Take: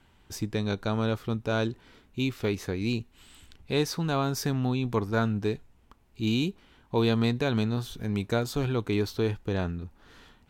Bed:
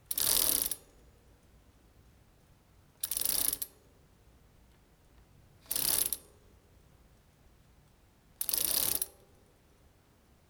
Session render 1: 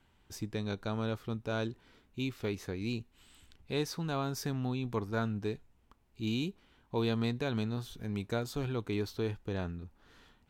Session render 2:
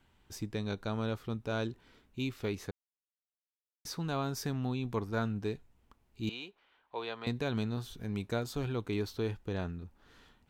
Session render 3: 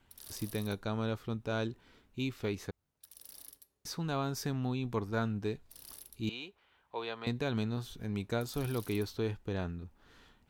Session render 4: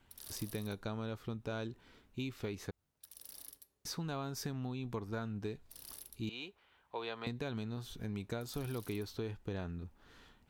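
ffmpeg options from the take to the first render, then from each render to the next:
ffmpeg -i in.wav -af "volume=-7dB" out.wav
ffmpeg -i in.wav -filter_complex "[0:a]asettb=1/sr,asplit=3[link_01][link_02][link_03];[link_01]atrim=end=6.294[link_04];[link_02]atrim=start=6.29:end=7.27,asetpts=PTS-STARTPTS,afade=type=in:duration=0.004:curve=qsin,afade=type=out:start_time=0.976:duration=0.004:curve=qsin,acrossover=split=480 4000:gain=0.0631 1 0.141[link_05][link_06][link_07];[link_05][link_06][link_07]amix=inputs=3:normalize=0[link_08];[link_03]atrim=start=7.266[link_09];[link_04][link_08]acrossfade=duration=0.004:curve1=hsin:curve2=qsin[link_10];[link_10][link_09]acrossfade=duration=0.004:curve1=qsin:curve2=hsin,asplit=3[link_11][link_12][link_13];[link_11]atrim=end=2.71,asetpts=PTS-STARTPTS,afade=type=out:start_time=2.706:duration=0.004:curve=hsin[link_14];[link_12]atrim=start=2.71:end=3.85,asetpts=PTS-STARTPTS,volume=0[link_15];[link_13]atrim=start=3.85,asetpts=PTS-STARTPTS,afade=type=in:duration=0.004:curve=hsin[link_16];[link_14][link_15][link_16]concat=n=3:v=0:a=1" out.wav
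ffmpeg -i in.wav -i bed.wav -filter_complex "[1:a]volume=-21.5dB[link_01];[0:a][link_01]amix=inputs=2:normalize=0" out.wav
ffmpeg -i in.wav -af "acompressor=threshold=-36dB:ratio=6" out.wav

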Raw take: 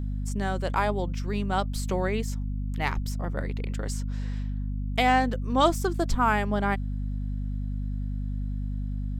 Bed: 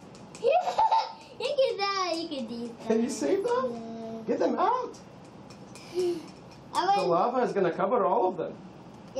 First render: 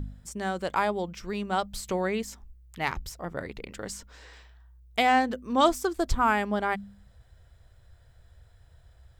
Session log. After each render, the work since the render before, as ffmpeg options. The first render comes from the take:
ffmpeg -i in.wav -af "bandreject=frequency=50:width_type=h:width=4,bandreject=frequency=100:width_type=h:width=4,bandreject=frequency=150:width_type=h:width=4,bandreject=frequency=200:width_type=h:width=4,bandreject=frequency=250:width_type=h:width=4" out.wav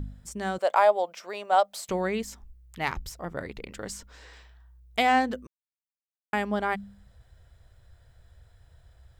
ffmpeg -i in.wav -filter_complex "[0:a]asettb=1/sr,asplit=3[link_01][link_02][link_03];[link_01]atrim=end=0.584[link_04];[link_02]atrim=start=0.58:end=1.89,asetpts=PTS-STARTPTS,afade=type=in:duration=0.004:curve=qsin,afade=type=out:start_time=1.306:duration=0.004:curve=qsin,highpass=frequency=630:width_type=q:width=3.6[link_05];[link_03]atrim=start=1.886[link_06];[link_04][link_05]acrossfade=duration=0.004:curve1=hsin:curve2=qsin[link_07];[link_07][link_06]acrossfade=duration=0.004:curve1=qsin:curve2=hsin,asplit=3[link_08][link_09][link_10];[link_08]atrim=end=5.47,asetpts=PTS-STARTPTS,afade=type=out:start_time=5.466:duration=0.004:curve=hsin[link_11];[link_09]atrim=start=5.47:end=6.33,asetpts=PTS-STARTPTS,volume=0[link_12];[link_10]atrim=start=6.33,asetpts=PTS-STARTPTS,afade=type=in:duration=0.004:curve=hsin[link_13];[link_11][link_12][link_13]concat=n=3:v=0:a=1" out.wav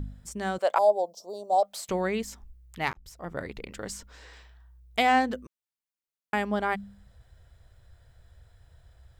ffmpeg -i in.wav -filter_complex "[0:a]asettb=1/sr,asplit=3[link_01][link_02][link_03];[link_01]atrim=end=0.784[link_04];[link_02]atrim=start=0.78:end=1.63,asetpts=PTS-STARTPTS,afade=type=in:duration=0.004:curve=qsin,afade=type=out:start_time=0.846:duration=0.004:curve=qsin,asuperstop=centerf=1900:order=8:qfactor=0.55[link_05];[link_03]atrim=start=1.626[link_06];[link_04][link_05]acrossfade=duration=0.004:curve1=hsin:curve2=qsin[link_07];[link_07][link_06]acrossfade=duration=0.004:curve1=qsin:curve2=hsin,asplit=2[link_08][link_09];[link_08]atrim=end=2.93,asetpts=PTS-STARTPTS,afade=type=out:start_time=2.926:duration=0.004:curve=hsin[link_10];[link_09]atrim=start=2.93,asetpts=PTS-STARTPTS,afade=type=in:duration=0.42[link_11];[link_10][link_11]concat=n=2:v=0:a=1" out.wav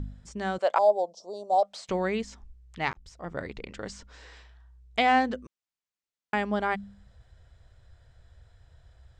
ffmpeg -i in.wav -filter_complex "[0:a]lowpass=frequency=8000:width=0.5412,lowpass=frequency=8000:width=1.3066,acrossover=split=6100[link_01][link_02];[link_02]acompressor=threshold=-58dB:ratio=4:attack=1:release=60[link_03];[link_01][link_03]amix=inputs=2:normalize=0" out.wav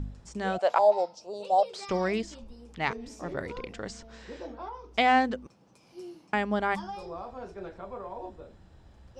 ffmpeg -i in.wav -i bed.wav -filter_complex "[1:a]volume=-15dB[link_01];[0:a][link_01]amix=inputs=2:normalize=0" out.wav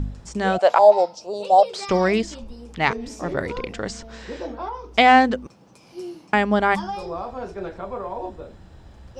ffmpeg -i in.wav -af "volume=9dB,alimiter=limit=-3dB:level=0:latency=1" out.wav

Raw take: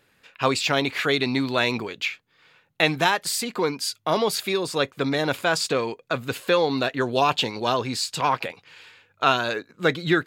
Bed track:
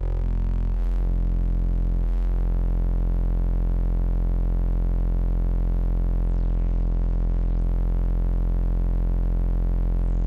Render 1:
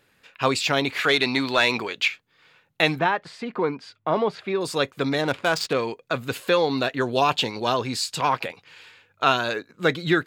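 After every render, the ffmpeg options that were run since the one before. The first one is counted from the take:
ffmpeg -i in.wav -filter_complex "[0:a]asettb=1/sr,asplit=3[link_01][link_02][link_03];[link_01]atrim=end=1.044[link_04];[link_02]atrim=start=1.04:end=2.08,asetpts=PTS-STARTPTS,afade=type=in:duration=0.004:curve=qsin,afade=type=out:start_time=1.036:duration=0.004:curve=qsin,asplit=2[link_05][link_06];[link_06]highpass=frequency=720:poles=1,volume=10dB,asoftclip=type=tanh:threshold=-6.5dB[link_07];[link_05][link_07]amix=inputs=2:normalize=0,lowpass=frequency=6700:poles=1,volume=-6dB[link_08];[link_03]atrim=start=2.076[link_09];[link_04][link_08]acrossfade=duration=0.004:curve1=hsin:curve2=qsin[link_10];[link_10][link_09]acrossfade=duration=0.004:curve1=qsin:curve2=hsin,asettb=1/sr,asplit=3[link_11][link_12][link_13];[link_11]atrim=end=2.994[link_14];[link_12]atrim=start=2.99:end=4.61,asetpts=PTS-STARTPTS,afade=type=in:duration=0.004:curve=qsin,afade=type=out:start_time=1.616:duration=0.004:curve=qsin,lowpass=1900[link_15];[link_13]atrim=start=4.606[link_16];[link_14][link_15]acrossfade=duration=0.004:curve1=hsin:curve2=qsin[link_17];[link_17][link_16]acrossfade=duration=0.004:curve1=qsin:curve2=hsin,asettb=1/sr,asplit=3[link_18][link_19][link_20];[link_18]atrim=end=5.214[link_21];[link_19]atrim=start=5.21:end=5.73,asetpts=PTS-STARTPTS,afade=type=in:duration=0.004:curve=qsin,afade=type=out:start_time=0.516:duration=0.004:curve=qsin,adynamicsmooth=sensitivity=3.5:basefreq=2100[link_22];[link_20]atrim=start=5.726[link_23];[link_21][link_22]acrossfade=duration=0.004:curve1=hsin:curve2=qsin[link_24];[link_24][link_23]acrossfade=duration=0.004:curve1=qsin:curve2=hsin" out.wav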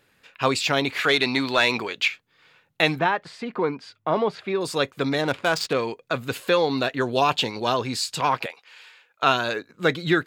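ffmpeg -i in.wav -filter_complex "[0:a]asettb=1/sr,asplit=3[link_01][link_02][link_03];[link_01]atrim=end=8.464[link_04];[link_02]atrim=start=8.46:end=9.23,asetpts=PTS-STARTPTS,afade=type=in:duration=0.004:curve=qsin,afade=type=out:start_time=0.766:duration=0.004:curve=qsin,highpass=600[link_05];[link_03]atrim=start=9.226[link_06];[link_04][link_05]acrossfade=duration=0.004:curve1=hsin:curve2=qsin[link_07];[link_07][link_06]acrossfade=duration=0.004:curve1=qsin:curve2=hsin" out.wav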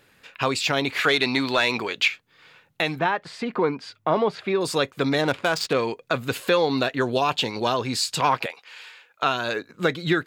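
ffmpeg -i in.wav -filter_complex "[0:a]asplit=2[link_01][link_02];[link_02]acompressor=threshold=-31dB:ratio=6,volume=-3dB[link_03];[link_01][link_03]amix=inputs=2:normalize=0,alimiter=limit=-9dB:level=0:latency=1:release=356" out.wav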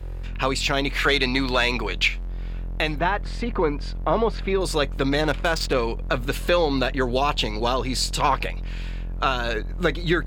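ffmpeg -i in.wav -i bed.wav -filter_complex "[1:a]volume=-8dB[link_01];[0:a][link_01]amix=inputs=2:normalize=0" out.wav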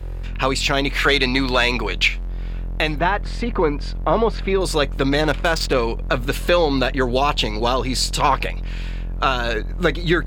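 ffmpeg -i in.wav -af "volume=3.5dB" out.wav

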